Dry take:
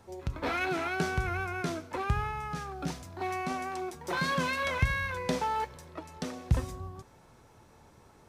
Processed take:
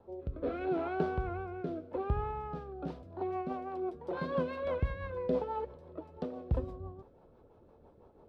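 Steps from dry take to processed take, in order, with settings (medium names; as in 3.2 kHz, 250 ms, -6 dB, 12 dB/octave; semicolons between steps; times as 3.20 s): graphic EQ 125/500/2000 Hz -6/+7/-12 dB; rotary cabinet horn 0.75 Hz, later 6 Hz, at 2.46 s; distance through air 450 m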